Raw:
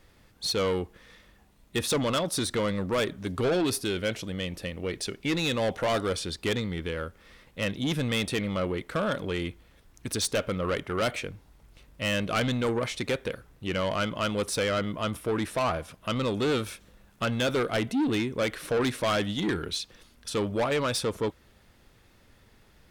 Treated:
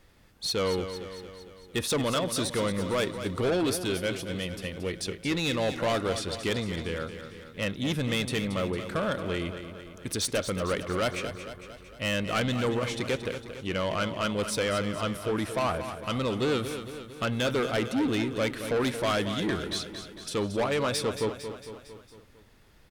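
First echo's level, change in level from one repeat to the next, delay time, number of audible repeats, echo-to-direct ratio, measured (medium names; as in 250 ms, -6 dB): -10.0 dB, -4.5 dB, 227 ms, 5, -8.5 dB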